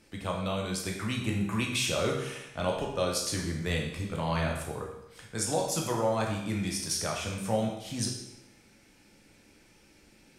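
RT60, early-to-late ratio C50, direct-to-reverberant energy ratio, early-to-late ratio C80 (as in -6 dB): 0.85 s, 3.5 dB, -1.0 dB, 6.5 dB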